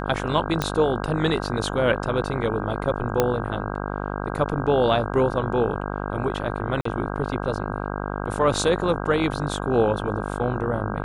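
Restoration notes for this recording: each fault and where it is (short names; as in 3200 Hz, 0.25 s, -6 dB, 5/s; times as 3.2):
buzz 50 Hz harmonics 32 -29 dBFS
0.62 pop -8 dBFS
3.2 pop -5 dBFS
6.81–6.85 gap 44 ms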